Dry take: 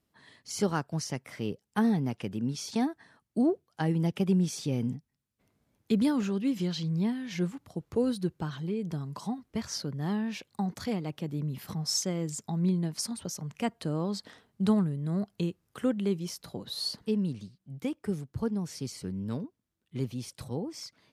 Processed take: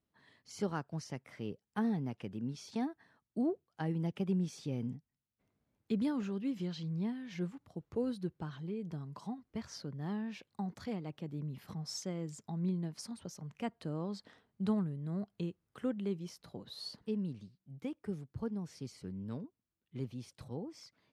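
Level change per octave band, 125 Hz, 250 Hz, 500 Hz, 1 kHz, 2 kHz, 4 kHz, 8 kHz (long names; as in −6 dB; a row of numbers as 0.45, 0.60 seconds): −7.5, −7.5, −7.5, −8.0, −8.5, −11.5, −14.0 decibels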